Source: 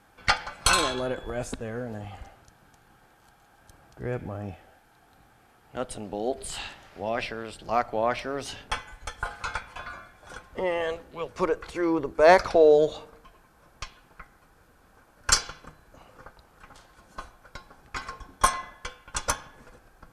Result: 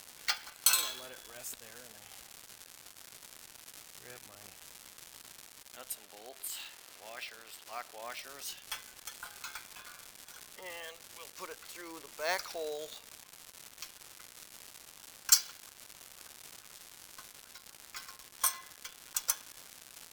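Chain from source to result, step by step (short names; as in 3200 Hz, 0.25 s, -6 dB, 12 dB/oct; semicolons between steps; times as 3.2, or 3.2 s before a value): crackle 460/s -36 dBFS; pre-emphasis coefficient 0.97; careless resampling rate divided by 2×, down none, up hold; 5.95–8.03 tone controls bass -6 dB, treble -3 dB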